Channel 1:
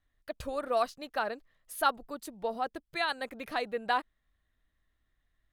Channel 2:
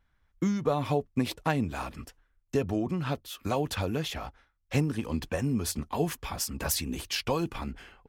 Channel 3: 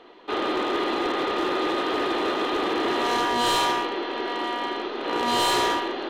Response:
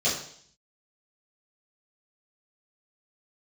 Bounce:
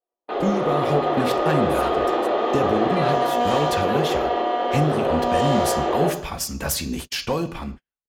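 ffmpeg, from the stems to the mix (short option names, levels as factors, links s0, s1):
-filter_complex "[0:a]alimiter=limit=0.0668:level=0:latency=1,volume=0.668[s0];[1:a]asoftclip=type=tanh:threshold=0.133,volume=1.33,asplit=2[s1][s2];[s2]volume=0.0944[s3];[2:a]lowpass=f=3500:p=1,equalizer=f=710:t=o:w=1.5:g=10.5,alimiter=limit=0.112:level=0:latency=1,volume=0.531,asplit=2[s4][s5];[s5]volume=0.447[s6];[3:a]atrim=start_sample=2205[s7];[s3][s6]amix=inputs=2:normalize=0[s8];[s8][s7]afir=irnorm=-1:irlink=0[s9];[s0][s1][s4][s9]amix=inputs=4:normalize=0,agate=range=0.00398:threshold=0.02:ratio=16:detection=peak,dynaudnorm=f=370:g=5:m=1.41"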